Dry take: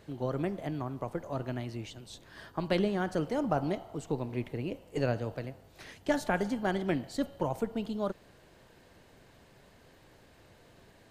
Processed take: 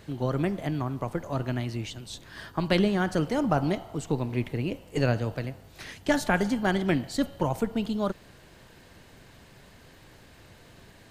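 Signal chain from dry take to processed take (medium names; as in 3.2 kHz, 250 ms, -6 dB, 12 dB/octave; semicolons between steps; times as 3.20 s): peaking EQ 540 Hz -5 dB 1.9 oct; trim +8 dB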